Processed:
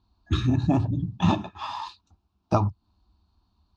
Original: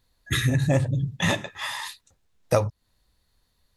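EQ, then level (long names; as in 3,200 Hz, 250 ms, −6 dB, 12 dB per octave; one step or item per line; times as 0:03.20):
bass and treble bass +15 dB, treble −10 dB
loudspeaker in its box 110–5,100 Hz, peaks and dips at 110 Hz −6 dB, 250 Hz −8 dB, 430 Hz −9 dB, 1,600 Hz −6 dB, 3,400 Hz −6 dB
phaser with its sweep stopped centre 530 Hz, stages 6
+5.5 dB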